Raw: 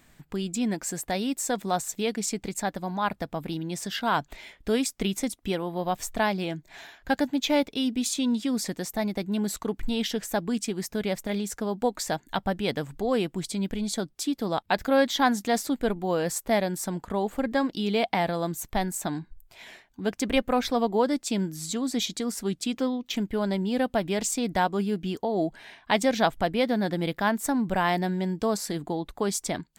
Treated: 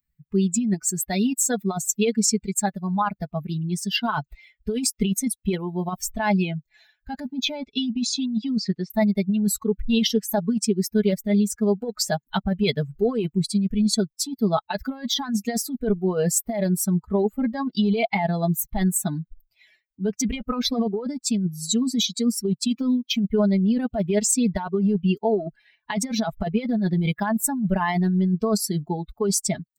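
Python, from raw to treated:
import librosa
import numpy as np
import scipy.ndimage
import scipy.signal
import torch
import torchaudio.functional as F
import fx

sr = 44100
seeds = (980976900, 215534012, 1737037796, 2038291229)

y = fx.bin_expand(x, sr, power=2.0)
y = fx.over_compress(y, sr, threshold_db=-34.0, ratio=-1.0)
y = y + 0.81 * np.pad(y, (int(4.7 * sr / 1000.0), 0))[:len(y)]
y = fx.lowpass(y, sr, hz=fx.line((7.57, 7800.0), (8.9, 3800.0)), slope=24, at=(7.57, 8.9), fade=0.02)
y = F.gain(torch.from_numpy(y), 9.0).numpy()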